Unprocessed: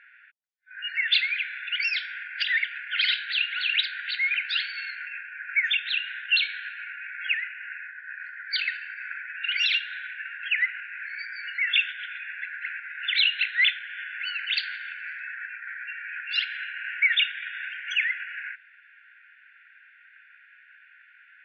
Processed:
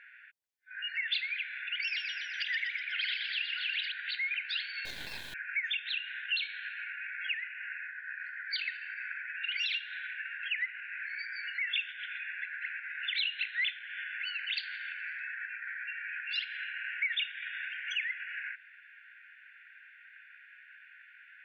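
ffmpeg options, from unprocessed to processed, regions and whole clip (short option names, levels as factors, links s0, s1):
-filter_complex "[0:a]asettb=1/sr,asplit=3[s0][s1][s2];[s0]atrim=end=1.634[s3];[s1]atrim=start=1.63:end=3.92,asetpts=PTS-STARTPTS,afade=t=in:d=0.004:c=qsin,afade=t=out:st=2.286:d=0.004:c=qsin,equalizer=f=3900:w=3.3:g=-6,asplit=8[s4][s5][s6][s7][s8][s9][s10][s11];[s5]adelay=123,afreqshift=96,volume=0.562[s12];[s6]adelay=246,afreqshift=192,volume=0.309[s13];[s7]adelay=369,afreqshift=288,volume=0.17[s14];[s8]adelay=492,afreqshift=384,volume=0.0933[s15];[s9]adelay=615,afreqshift=480,volume=0.0513[s16];[s10]adelay=738,afreqshift=576,volume=0.0282[s17];[s11]adelay=861,afreqshift=672,volume=0.0155[s18];[s4][s12][s13][s14][s15][s16][s17][s18]amix=inputs=8:normalize=0,atrim=end_sample=100989[s19];[s2]atrim=start=3.916[s20];[s3][s19]acrossfade=d=0.004:c1=hsin:c2=qsin[s21];[s21][s20]acrossfade=d=0.004:c1=qsin:c2=hsin,asettb=1/sr,asplit=3[s22][s23][s24];[s22]atrim=end=4.854[s25];[s23]atrim=start=4.85:end=5.34,asetpts=PTS-STARTPTS,afade=t=in:d=0.004:c=qsin,afade=t=out:st=0.486:d=0.004:c=qsin,acrusher=bits=5:dc=4:mix=0:aa=0.000001,equalizer=f=3800:t=o:w=0.55:g=7.5[s26];[s24]atrim=start=5.336[s27];[s25][s26]acrossfade=d=0.004:c1=hsin:c2=qsin[s28];[s28][s27]acrossfade=d=0.004:c1=qsin:c2=hsin,equalizer=f=1300:t=o:w=0.25:g=-7,acompressor=threshold=0.0126:ratio=2"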